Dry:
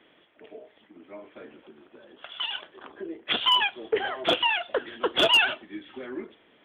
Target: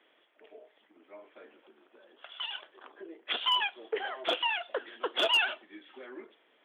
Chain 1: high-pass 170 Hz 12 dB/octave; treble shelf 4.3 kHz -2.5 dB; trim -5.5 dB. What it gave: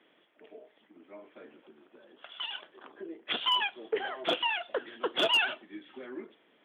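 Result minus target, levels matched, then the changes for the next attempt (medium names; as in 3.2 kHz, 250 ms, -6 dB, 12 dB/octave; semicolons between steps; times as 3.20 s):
125 Hz band +12.0 dB
change: high-pass 410 Hz 12 dB/octave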